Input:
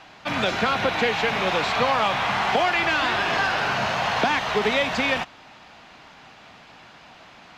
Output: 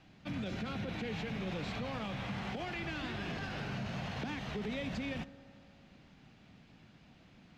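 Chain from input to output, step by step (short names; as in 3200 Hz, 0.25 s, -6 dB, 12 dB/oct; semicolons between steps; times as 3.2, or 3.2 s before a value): EQ curve 200 Hz 0 dB, 960 Hz -21 dB, 2200 Hz -15 dB; limiter -28.5 dBFS, peak gain reduction 11 dB; on a send: reverb RT60 2.3 s, pre-delay 3 ms, DRR 15.5 dB; on the sum: gain -2 dB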